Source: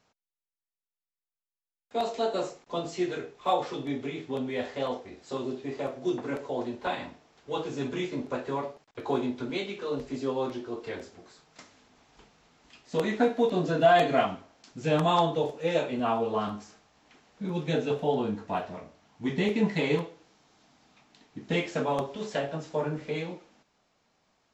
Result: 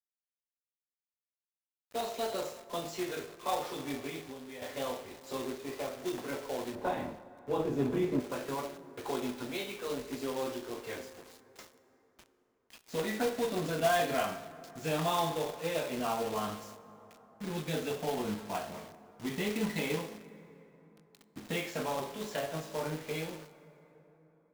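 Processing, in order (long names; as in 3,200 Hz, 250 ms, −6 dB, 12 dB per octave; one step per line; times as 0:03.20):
low-shelf EQ 480 Hz −4 dB
tuned comb filter 53 Hz, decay 0.49 s, harmonics all, mix 60%
log-companded quantiser 4 bits
in parallel at −1.5 dB: brickwall limiter −31.5 dBFS, peak gain reduction 13 dB
0:06.75–0:08.20: on the sum: tilt shelving filter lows +9.5 dB, about 1,300 Hz
on a send at −14.5 dB: convolution reverb RT60 4.0 s, pre-delay 13 ms
0:04.19–0:04.62: on the sum: downward compressor 12 to 1, threshold −39 dBFS, peak gain reduction 11 dB
level −3 dB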